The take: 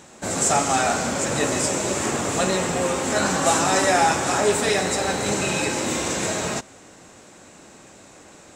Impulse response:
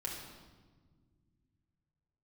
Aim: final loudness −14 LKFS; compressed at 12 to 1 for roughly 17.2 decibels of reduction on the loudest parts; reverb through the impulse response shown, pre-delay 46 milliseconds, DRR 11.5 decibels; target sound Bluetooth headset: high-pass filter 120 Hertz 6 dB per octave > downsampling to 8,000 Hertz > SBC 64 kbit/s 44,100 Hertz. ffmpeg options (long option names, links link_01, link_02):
-filter_complex "[0:a]acompressor=threshold=-32dB:ratio=12,asplit=2[link_01][link_02];[1:a]atrim=start_sample=2205,adelay=46[link_03];[link_02][link_03]afir=irnorm=-1:irlink=0,volume=-12.5dB[link_04];[link_01][link_04]amix=inputs=2:normalize=0,highpass=frequency=120:poles=1,aresample=8000,aresample=44100,volume=22.5dB" -ar 44100 -c:a sbc -b:a 64k